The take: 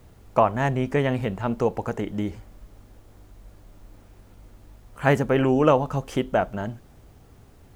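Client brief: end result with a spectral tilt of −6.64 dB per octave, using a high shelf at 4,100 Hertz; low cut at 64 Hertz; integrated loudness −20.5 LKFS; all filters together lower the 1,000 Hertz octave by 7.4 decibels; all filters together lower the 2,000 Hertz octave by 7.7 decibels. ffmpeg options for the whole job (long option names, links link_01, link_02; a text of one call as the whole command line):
ffmpeg -i in.wav -af "highpass=64,equalizer=frequency=1000:width_type=o:gain=-9,equalizer=frequency=2000:width_type=o:gain=-5,highshelf=frequency=4100:gain=-7.5,volume=5.5dB" out.wav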